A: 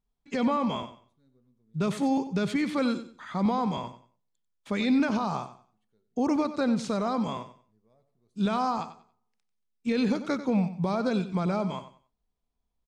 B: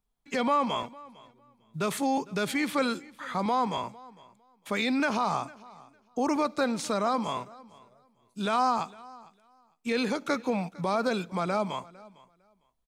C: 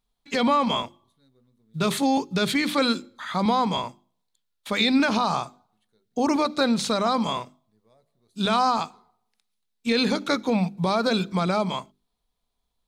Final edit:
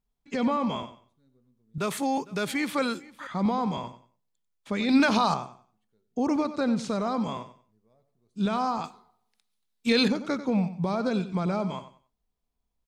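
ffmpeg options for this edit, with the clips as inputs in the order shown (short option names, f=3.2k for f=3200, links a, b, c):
-filter_complex "[2:a]asplit=2[a][b];[0:a]asplit=4[c][d][e][f];[c]atrim=end=1.782[g];[1:a]atrim=start=1.778:end=3.272[h];[d]atrim=start=3.268:end=4.892[i];[a]atrim=start=4.888:end=5.342[j];[e]atrim=start=5.338:end=8.842[k];[b]atrim=start=8.838:end=10.082[l];[f]atrim=start=10.078[m];[g][h]acrossfade=d=0.004:c1=hsin:c2=hsin[n];[n][i]acrossfade=d=0.004:c1=hsin:c2=hsin[o];[o][j]acrossfade=d=0.004:c1=hsin:c2=hsin[p];[p][k]acrossfade=d=0.004:c1=hsin:c2=hsin[q];[q][l]acrossfade=d=0.004:c1=hsin:c2=hsin[r];[r][m]acrossfade=d=0.004:c1=hsin:c2=hsin"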